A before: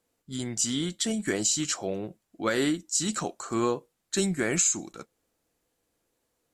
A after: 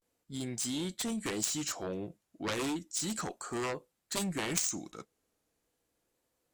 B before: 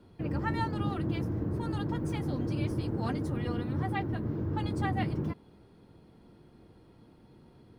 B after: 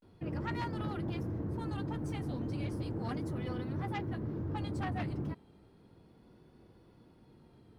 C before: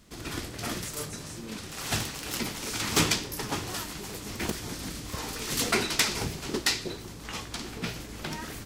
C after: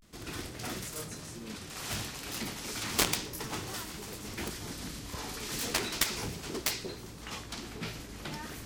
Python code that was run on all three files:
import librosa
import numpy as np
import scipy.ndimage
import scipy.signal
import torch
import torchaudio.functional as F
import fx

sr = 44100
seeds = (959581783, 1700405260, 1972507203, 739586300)

y = fx.cheby_harmonics(x, sr, harmonics=(7,), levels_db=(-12,), full_scale_db=-6.5)
y = fx.vibrato(y, sr, rate_hz=0.34, depth_cents=73.0)
y = y * 10.0 ** (-1.0 / 20.0)